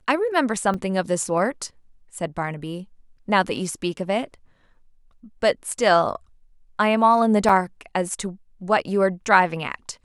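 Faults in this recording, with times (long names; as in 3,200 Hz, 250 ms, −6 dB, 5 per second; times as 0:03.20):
0:00.74: drop-out 4 ms
0:07.49: drop-out 4 ms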